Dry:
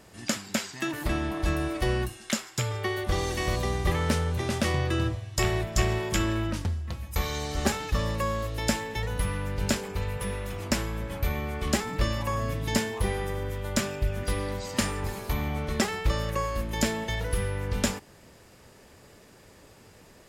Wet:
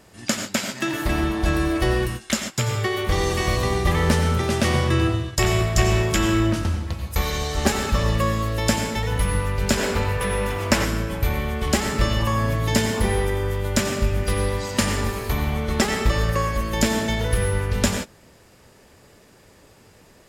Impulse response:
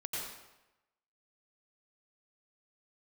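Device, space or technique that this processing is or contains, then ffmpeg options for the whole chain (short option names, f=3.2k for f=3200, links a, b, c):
keyed gated reverb: -filter_complex "[0:a]asplit=3[a][b][c];[1:a]atrim=start_sample=2205[d];[b][d]afir=irnorm=-1:irlink=0[e];[c]apad=whole_len=894453[f];[e][f]sidechaingate=range=-33dB:threshold=-39dB:ratio=16:detection=peak,volume=-1.5dB[g];[a][g]amix=inputs=2:normalize=0,asettb=1/sr,asplit=3[h][i][j];[h]atrim=end=9.774[k];[i]atrim=start=9.77:end=10.85,asetpts=PTS-STARTPTS,afade=t=in:d=0.004:c=qsin,afade=t=out:st=1.076:d=0.004:c=qsin,equalizer=f=1.1k:w=0.38:g=5.5[l];[j]atrim=start=10.846[m];[k][l]acrossfade=d=0.004:c1=hsin:c2=qsin[n];[n][m]acrossfade=d=0.004:c1=qsin:c2=hsin,volume=1.5dB"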